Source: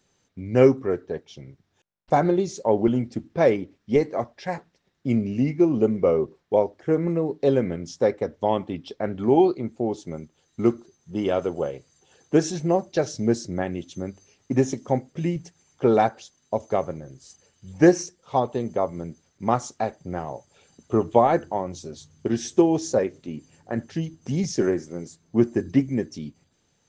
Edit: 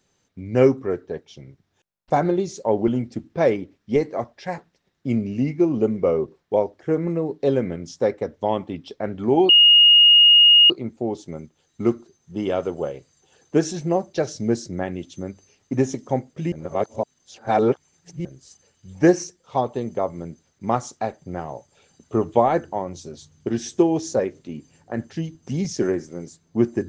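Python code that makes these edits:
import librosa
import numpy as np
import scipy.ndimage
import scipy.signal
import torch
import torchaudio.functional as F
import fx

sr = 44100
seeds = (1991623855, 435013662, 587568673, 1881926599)

y = fx.edit(x, sr, fx.insert_tone(at_s=9.49, length_s=1.21, hz=2860.0, db=-8.5),
    fx.reverse_span(start_s=15.31, length_s=1.73), tone=tone)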